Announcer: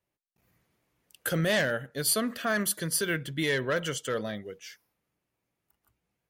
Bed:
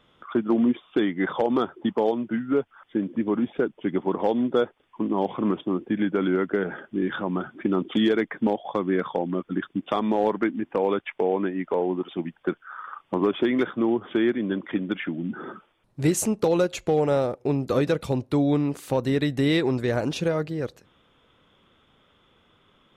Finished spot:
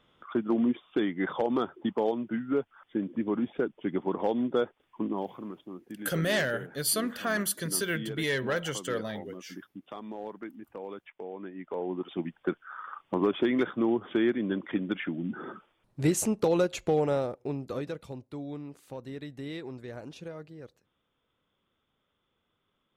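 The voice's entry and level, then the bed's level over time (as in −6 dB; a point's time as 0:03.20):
4.80 s, −1.5 dB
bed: 0:05.06 −5 dB
0:05.49 −17 dB
0:11.33 −17 dB
0:12.15 −3.5 dB
0:16.94 −3.5 dB
0:18.26 −17 dB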